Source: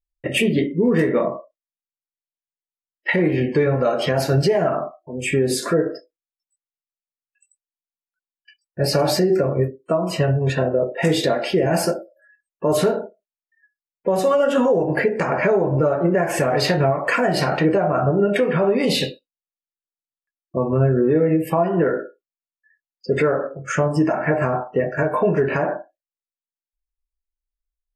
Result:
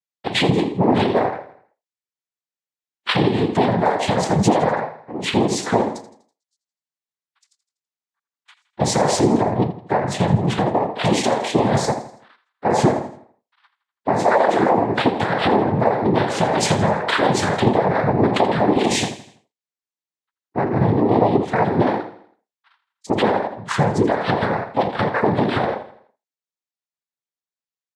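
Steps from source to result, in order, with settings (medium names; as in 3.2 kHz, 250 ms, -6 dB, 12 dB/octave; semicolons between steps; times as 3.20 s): noise-vocoded speech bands 6; feedback delay 82 ms, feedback 46%, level -14.5 dB; trim +1 dB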